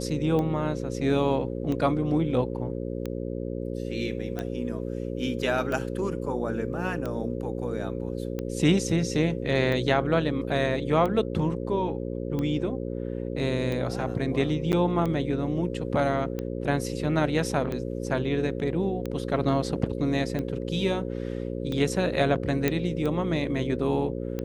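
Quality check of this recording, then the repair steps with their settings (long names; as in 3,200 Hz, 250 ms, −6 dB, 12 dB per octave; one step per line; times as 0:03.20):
mains buzz 60 Hz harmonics 9 −32 dBFS
scratch tick 45 rpm −19 dBFS
0:14.72–0:14.73: drop-out 9.1 ms
0:22.68: click −10 dBFS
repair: click removal
hum removal 60 Hz, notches 9
repair the gap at 0:14.72, 9.1 ms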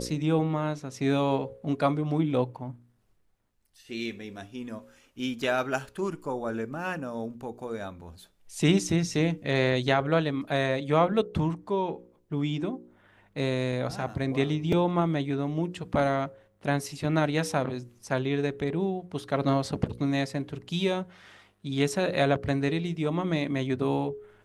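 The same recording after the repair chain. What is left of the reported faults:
none of them is left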